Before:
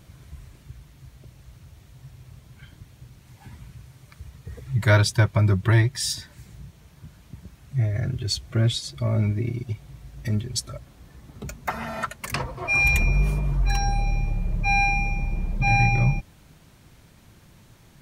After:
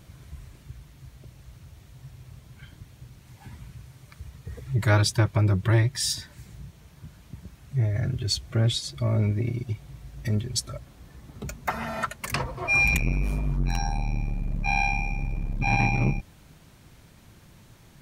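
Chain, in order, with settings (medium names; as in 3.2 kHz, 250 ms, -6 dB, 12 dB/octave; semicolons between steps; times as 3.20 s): transformer saturation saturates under 370 Hz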